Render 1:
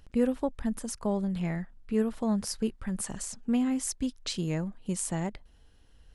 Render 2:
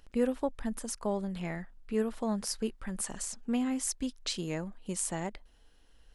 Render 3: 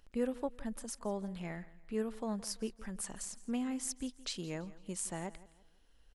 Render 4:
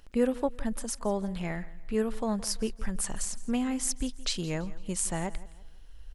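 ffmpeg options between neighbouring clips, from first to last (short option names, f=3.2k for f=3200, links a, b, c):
-af "equalizer=f=98:t=o:w=1.9:g=-12"
-af "aecho=1:1:167|334|501:0.112|0.0404|0.0145,volume=-5.5dB"
-af "asubboost=boost=3.5:cutoff=120,volume=8.5dB"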